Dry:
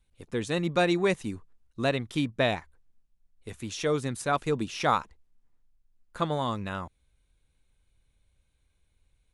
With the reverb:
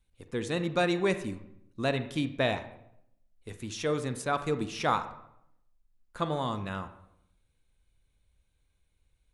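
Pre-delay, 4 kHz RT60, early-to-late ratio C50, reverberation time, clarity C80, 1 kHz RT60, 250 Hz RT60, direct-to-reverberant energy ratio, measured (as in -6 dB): 33 ms, 0.55 s, 11.5 dB, 0.75 s, 14.5 dB, 0.70 s, 0.85 s, 10.0 dB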